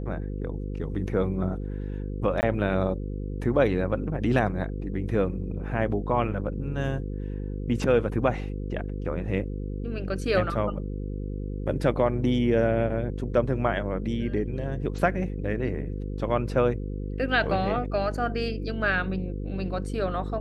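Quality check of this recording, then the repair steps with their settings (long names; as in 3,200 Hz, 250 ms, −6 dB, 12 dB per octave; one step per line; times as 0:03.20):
mains buzz 50 Hz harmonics 10 −32 dBFS
0:02.41–0:02.43: drop-out 19 ms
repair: hum removal 50 Hz, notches 10
repair the gap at 0:02.41, 19 ms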